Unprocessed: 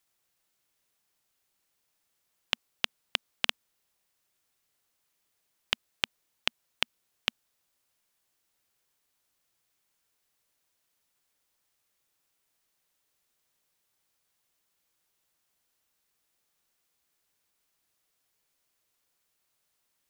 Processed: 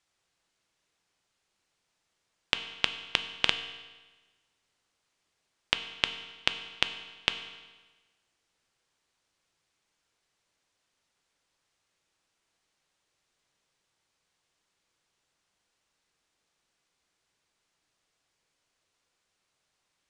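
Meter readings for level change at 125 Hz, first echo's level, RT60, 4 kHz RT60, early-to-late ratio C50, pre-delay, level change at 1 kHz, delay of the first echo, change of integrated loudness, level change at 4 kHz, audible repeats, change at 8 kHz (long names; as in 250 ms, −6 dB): +4.0 dB, no echo audible, 1.3 s, 1.2 s, 10.5 dB, 4 ms, +3.5 dB, no echo audible, +2.5 dB, +3.0 dB, no echo audible, −0.5 dB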